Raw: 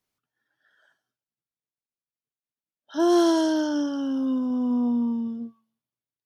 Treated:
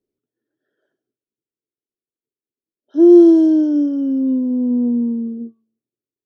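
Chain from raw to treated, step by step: EQ curve 170 Hz 0 dB, 390 Hz +15 dB, 870 Hz -14 dB

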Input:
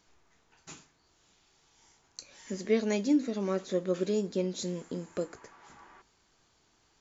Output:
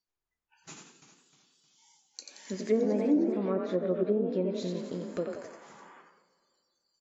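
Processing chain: frequency-shifting echo 88 ms, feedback 48%, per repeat +36 Hz, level -5 dB; treble ducked by the level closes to 840 Hz, closed at -23 dBFS; spectral noise reduction 28 dB; plate-style reverb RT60 2.1 s, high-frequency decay 0.9×, pre-delay 0.11 s, DRR 17.5 dB; 0.71–3.37 warbling echo 0.311 s, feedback 37%, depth 96 cents, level -10 dB

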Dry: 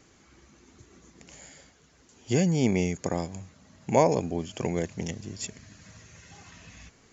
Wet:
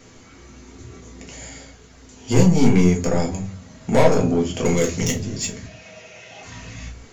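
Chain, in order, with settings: 4.65–5.14 high shelf 2900 Hz +12 dB; soft clip -23 dBFS, distortion -8 dB; 5.66–6.43 speaker cabinet 270–5700 Hz, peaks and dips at 270 Hz -8 dB, 660 Hz +10 dB, 1100 Hz -6 dB, 1700 Hz -5 dB, 2600 Hz +7 dB, 4400 Hz -6 dB; shoebox room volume 130 m³, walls furnished, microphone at 1.7 m; gain +7.5 dB

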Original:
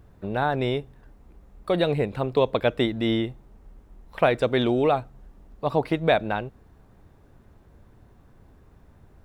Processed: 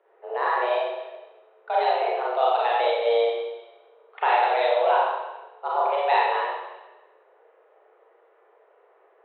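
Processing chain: Wiener smoothing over 9 samples; Schroeder reverb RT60 1.1 s, combs from 31 ms, DRR -6.5 dB; mistuned SSB +240 Hz 180–3500 Hz; gain -5.5 dB

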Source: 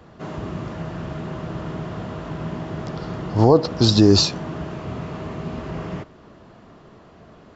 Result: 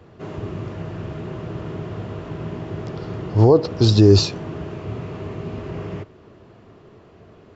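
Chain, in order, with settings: fifteen-band EQ 100 Hz +10 dB, 400 Hz +8 dB, 2500 Hz +4 dB; gain -4.5 dB

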